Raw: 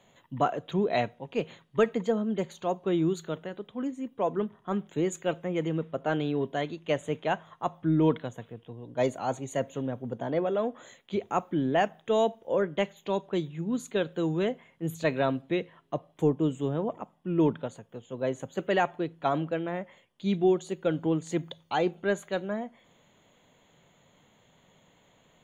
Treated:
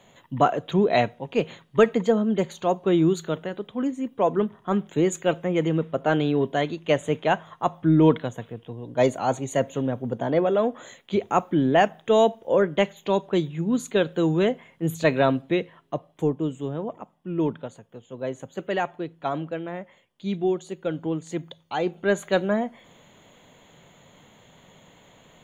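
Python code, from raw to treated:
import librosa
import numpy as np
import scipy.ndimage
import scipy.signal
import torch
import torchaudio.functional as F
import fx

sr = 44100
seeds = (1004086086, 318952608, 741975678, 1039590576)

y = fx.gain(x, sr, db=fx.line((15.32, 6.5), (16.52, -0.5), (21.73, -0.5), (22.33, 9.0)))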